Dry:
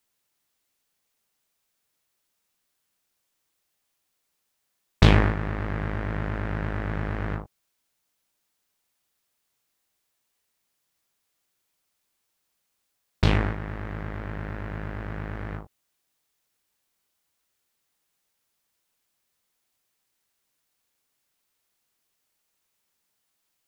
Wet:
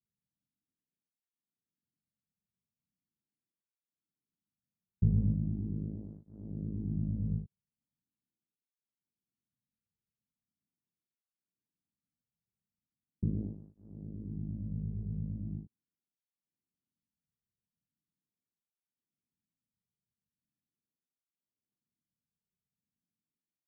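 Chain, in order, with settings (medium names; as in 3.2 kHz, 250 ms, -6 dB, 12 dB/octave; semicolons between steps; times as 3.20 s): peak limiter -13.5 dBFS, peak gain reduction 10 dB; four-pole ladder low-pass 280 Hz, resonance 25%; cancelling through-zero flanger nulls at 0.4 Hz, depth 3.6 ms; trim +5 dB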